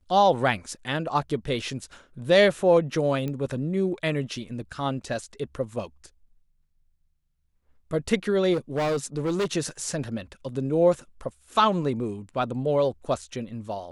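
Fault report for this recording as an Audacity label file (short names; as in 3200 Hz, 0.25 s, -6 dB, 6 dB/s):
3.280000	3.280000	pop -19 dBFS
8.530000	9.530000	clipped -22 dBFS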